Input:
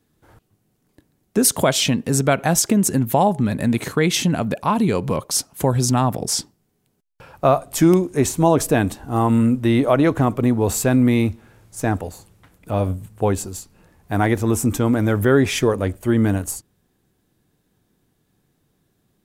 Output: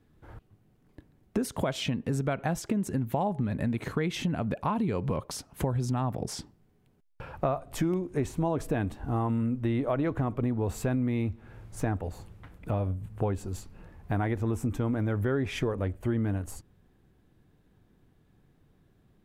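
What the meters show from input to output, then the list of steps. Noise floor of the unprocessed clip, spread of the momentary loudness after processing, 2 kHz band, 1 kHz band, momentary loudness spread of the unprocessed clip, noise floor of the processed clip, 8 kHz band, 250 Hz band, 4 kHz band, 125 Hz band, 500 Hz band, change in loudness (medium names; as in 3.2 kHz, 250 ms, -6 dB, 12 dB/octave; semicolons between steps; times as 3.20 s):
-68 dBFS, 8 LU, -12.5 dB, -12.0 dB, 8 LU, -65 dBFS, -20.5 dB, -11.5 dB, -15.0 dB, -8.5 dB, -12.0 dB, -11.5 dB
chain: bass shelf 110 Hz +12 dB; compression 4:1, threshold -27 dBFS, peak gain reduction 16 dB; tone controls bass -2 dB, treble -12 dB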